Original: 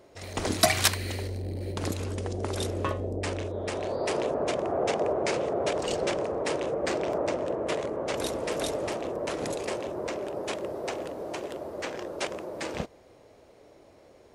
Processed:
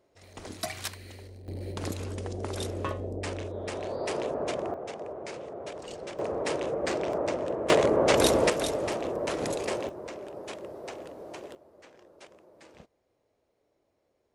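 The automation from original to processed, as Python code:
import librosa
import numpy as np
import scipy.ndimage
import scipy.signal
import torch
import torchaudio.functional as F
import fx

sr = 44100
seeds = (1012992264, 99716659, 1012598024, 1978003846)

y = fx.gain(x, sr, db=fx.steps((0.0, -13.0), (1.48, -3.0), (4.74, -11.5), (6.19, -1.0), (7.7, 9.0), (8.5, 1.0), (9.89, -7.0), (11.55, -19.5)))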